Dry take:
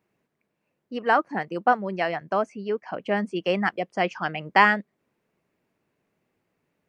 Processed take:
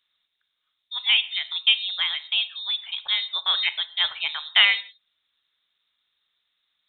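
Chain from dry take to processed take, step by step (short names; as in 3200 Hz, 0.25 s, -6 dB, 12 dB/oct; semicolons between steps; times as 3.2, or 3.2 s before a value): inverted band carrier 3900 Hz; non-linear reverb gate 0.19 s falling, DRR 12 dB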